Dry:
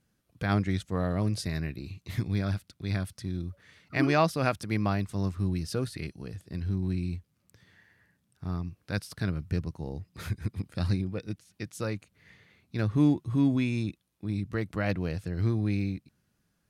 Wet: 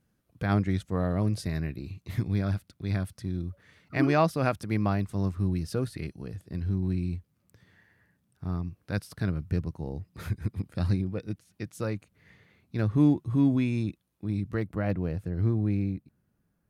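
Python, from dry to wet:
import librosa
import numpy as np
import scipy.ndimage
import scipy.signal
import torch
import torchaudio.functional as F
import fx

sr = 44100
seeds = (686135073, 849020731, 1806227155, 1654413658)

y = fx.peak_eq(x, sr, hz=5000.0, db=fx.steps((0.0, -6.0), (14.63, -14.0)), octaves=2.9)
y = y * 10.0 ** (1.5 / 20.0)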